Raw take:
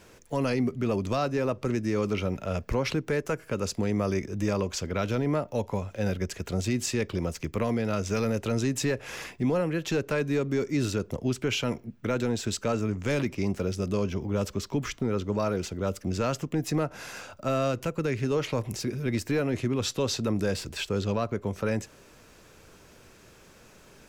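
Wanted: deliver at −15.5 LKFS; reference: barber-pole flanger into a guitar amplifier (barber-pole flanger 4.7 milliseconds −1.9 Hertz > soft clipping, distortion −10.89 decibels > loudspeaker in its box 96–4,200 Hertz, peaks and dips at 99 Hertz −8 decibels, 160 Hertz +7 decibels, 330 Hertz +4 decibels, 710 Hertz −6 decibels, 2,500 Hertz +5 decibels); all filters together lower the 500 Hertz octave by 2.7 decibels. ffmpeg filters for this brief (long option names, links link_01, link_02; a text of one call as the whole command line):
ffmpeg -i in.wav -filter_complex "[0:a]equalizer=frequency=500:width_type=o:gain=-3.5,asplit=2[link_01][link_02];[link_02]adelay=4.7,afreqshift=-1.9[link_03];[link_01][link_03]amix=inputs=2:normalize=1,asoftclip=threshold=-29.5dB,highpass=96,equalizer=frequency=99:width_type=q:width=4:gain=-8,equalizer=frequency=160:width_type=q:width=4:gain=7,equalizer=frequency=330:width_type=q:width=4:gain=4,equalizer=frequency=710:width_type=q:width=4:gain=-6,equalizer=frequency=2500:width_type=q:width=4:gain=5,lowpass=frequency=4200:width=0.5412,lowpass=frequency=4200:width=1.3066,volume=20.5dB" out.wav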